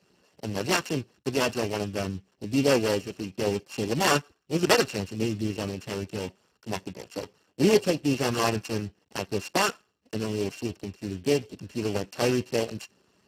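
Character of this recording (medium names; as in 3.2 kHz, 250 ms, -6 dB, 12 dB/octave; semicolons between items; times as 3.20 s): a buzz of ramps at a fixed pitch in blocks of 16 samples; Speex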